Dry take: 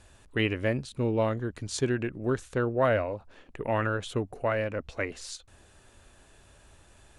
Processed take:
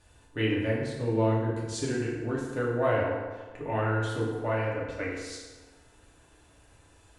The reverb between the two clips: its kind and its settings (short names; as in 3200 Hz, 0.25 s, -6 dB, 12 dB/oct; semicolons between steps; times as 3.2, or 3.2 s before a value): FDN reverb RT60 1.4 s, low-frequency decay 0.85×, high-frequency decay 0.65×, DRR -6 dB; gain -8 dB